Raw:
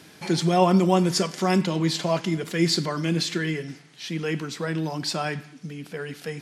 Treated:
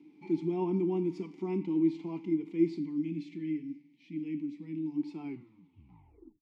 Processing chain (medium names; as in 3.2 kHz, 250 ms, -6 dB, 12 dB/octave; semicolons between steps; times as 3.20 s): tape stop on the ending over 1.20 s; time-frequency box 2.78–4.96 s, 310–1700 Hz -12 dB; resonant low shelf 550 Hz +7 dB, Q 1.5; harmonic-percussive split percussive -5 dB; vowel filter u; trim -4 dB